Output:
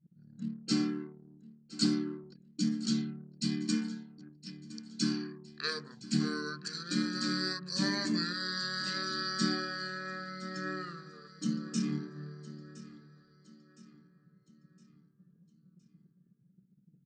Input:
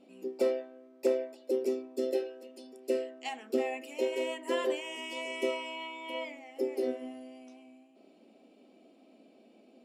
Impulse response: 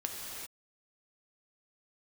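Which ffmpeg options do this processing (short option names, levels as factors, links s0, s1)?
-filter_complex "[0:a]equalizer=f=315:t=o:w=0.33:g=12,equalizer=f=1000:t=o:w=0.33:g=-4,equalizer=f=1600:t=o:w=0.33:g=-6,equalizer=f=5000:t=o:w=0.33:g=-9,equalizer=f=8000:t=o:w=0.33:g=11,anlmdn=0.0158,crystalizer=i=6:c=0,asetrate=25442,aresample=44100,asplit=2[s0][s1];[s1]aecho=0:1:1014|2028|3042|4056:0.133|0.06|0.027|0.0122[s2];[s0][s2]amix=inputs=2:normalize=0,volume=0.531"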